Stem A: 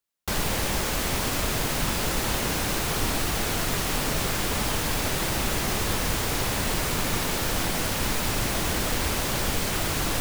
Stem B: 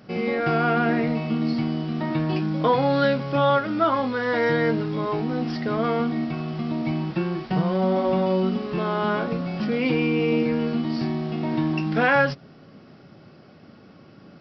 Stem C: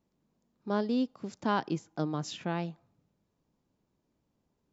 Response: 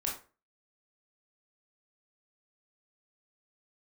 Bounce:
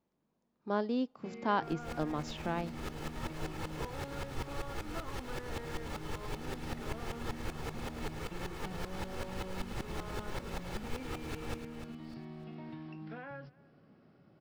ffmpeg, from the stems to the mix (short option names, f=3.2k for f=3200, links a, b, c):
-filter_complex "[0:a]aecho=1:1:2.3:0.47,flanger=delay=7.4:depth=8.5:regen=72:speed=1:shape=triangular,aeval=exprs='val(0)*pow(10,-22*if(lt(mod(-5.2*n/s,1),2*abs(-5.2)/1000),1-mod(-5.2*n/s,1)/(2*abs(-5.2)/1000),(mod(-5.2*n/s,1)-2*abs(-5.2)/1000)/(1-2*abs(-5.2)/1000))/20)':c=same,adelay=1350,volume=-4dB,asplit=2[a][b];[b]volume=-9dB[c];[1:a]acrossover=split=150|1400[d][e][f];[d]acompressor=threshold=-39dB:ratio=4[g];[e]acompressor=threshold=-32dB:ratio=4[h];[f]acompressor=threshold=-40dB:ratio=4[i];[g][h][i]amix=inputs=3:normalize=0,adelay=1150,volume=-14.5dB,asplit=2[j][k];[k]volume=-23dB[l];[2:a]lowshelf=f=350:g=-8.5,volume=1.5dB,asplit=2[m][n];[n]apad=whole_len=509640[o];[a][o]sidechaincompress=threshold=-46dB:ratio=5:attack=22:release=180[p];[c][l]amix=inputs=2:normalize=0,aecho=0:1:300|600|900|1200|1500:1|0.36|0.13|0.0467|0.0168[q];[p][j][m][q]amix=inputs=4:normalize=0,lowpass=f=2.1k:p=1"